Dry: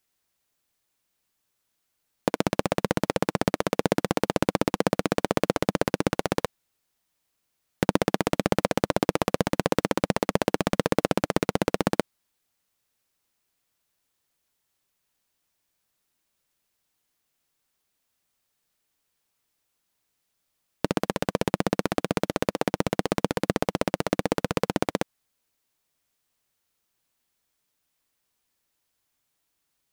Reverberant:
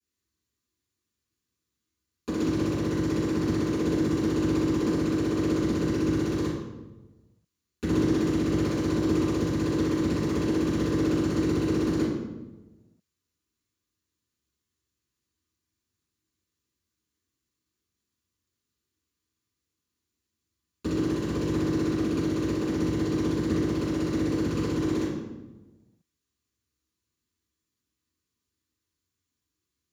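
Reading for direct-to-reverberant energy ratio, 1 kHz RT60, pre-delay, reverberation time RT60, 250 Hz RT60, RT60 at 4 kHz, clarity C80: -13.5 dB, 1.0 s, 3 ms, 1.2 s, 1.3 s, 0.75 s, 3.0 dB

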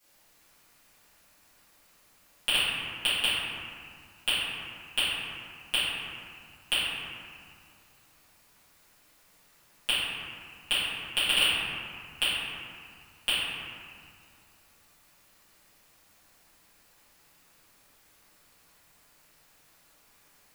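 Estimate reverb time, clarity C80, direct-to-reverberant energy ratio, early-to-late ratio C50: 2.1 s, -0.5 dB, -15.5 dB, -3.0 dB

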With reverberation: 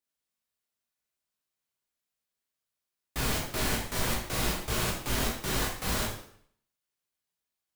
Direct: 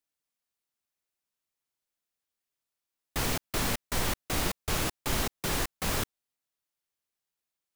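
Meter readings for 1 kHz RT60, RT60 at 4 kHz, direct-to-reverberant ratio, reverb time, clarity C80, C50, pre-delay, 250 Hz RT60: 0.65 s, 0.60 s, -3.5 dB, 0.65 s, 7.5 dB, 4.0 dB, 6 ms, 0.65 s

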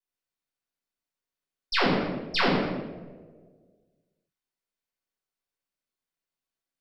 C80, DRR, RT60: 2.5 dB, -10.5 dB, 1.5 s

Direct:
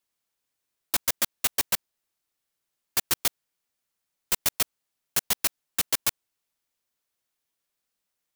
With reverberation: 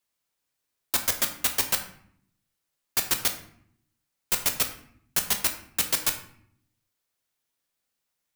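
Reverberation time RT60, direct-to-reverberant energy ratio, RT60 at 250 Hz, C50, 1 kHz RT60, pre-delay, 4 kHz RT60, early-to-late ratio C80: 0.65 s, 4.5 dB, 1.0 s, 10.0 dB, 0.65 s, 8 ms, 0.45 s, 13.0 dB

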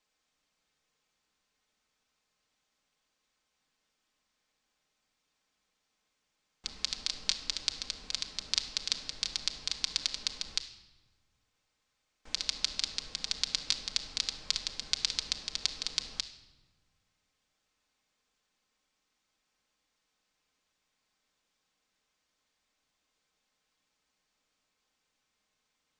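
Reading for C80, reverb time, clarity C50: 13.5 dB, 1.2 s, 11.0 dB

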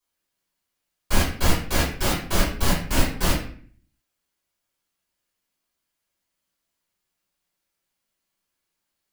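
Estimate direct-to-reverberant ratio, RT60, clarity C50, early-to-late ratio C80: -10.0 dB, 0.50 s, 4.5 dB, 8.5 dB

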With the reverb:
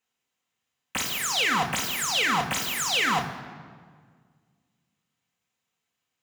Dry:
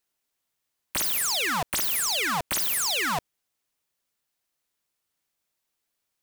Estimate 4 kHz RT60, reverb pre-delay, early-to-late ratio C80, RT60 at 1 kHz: 1.2 s, 3 ms, 11.5 dB, 1.7 s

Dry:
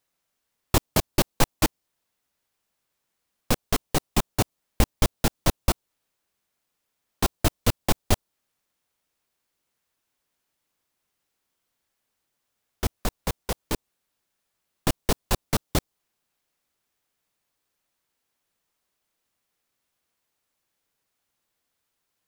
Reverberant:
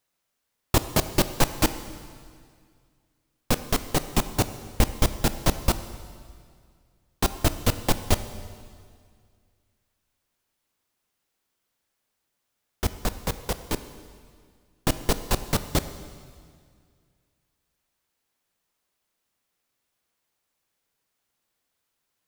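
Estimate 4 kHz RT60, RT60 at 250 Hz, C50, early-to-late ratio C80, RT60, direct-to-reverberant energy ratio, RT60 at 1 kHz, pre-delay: 1.9 s, 2.2 s, 12.0 dB, 13.0 dB, 2.1 s, 11.0 dB, 2.0 s, 13 ms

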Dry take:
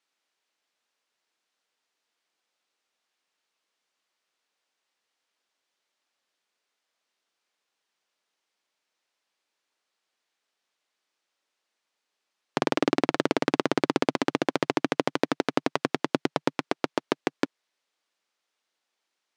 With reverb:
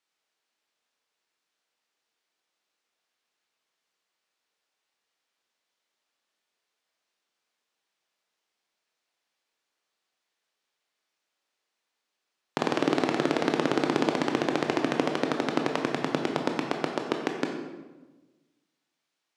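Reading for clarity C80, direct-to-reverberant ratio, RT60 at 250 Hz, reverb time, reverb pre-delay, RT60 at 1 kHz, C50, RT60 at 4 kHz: 7.0 dB, 2.5 dB, 1.5 s, 1.2 s, 17 ms, 1.1 s, 5.0 dB, 0.80 s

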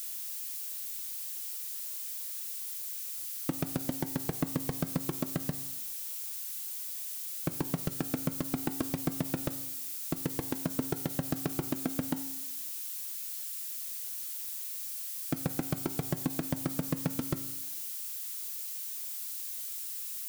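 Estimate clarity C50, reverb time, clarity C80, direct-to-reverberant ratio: 13.0 dB, 0.95 s, 15.0 dB, 9.5 dB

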